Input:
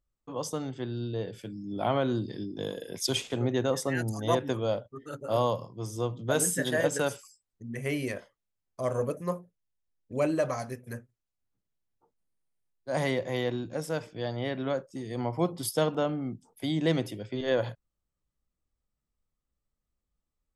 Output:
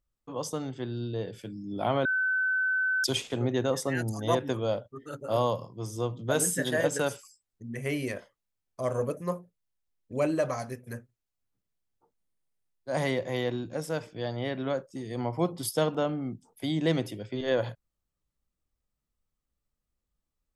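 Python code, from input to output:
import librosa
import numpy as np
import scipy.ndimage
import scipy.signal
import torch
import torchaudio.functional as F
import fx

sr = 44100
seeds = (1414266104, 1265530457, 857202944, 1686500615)

y = fx.edit(x, sr, fx.bleep(start_s=2.05, length_s=0.99, hz=1520.0, db=-24.0), tone=tone)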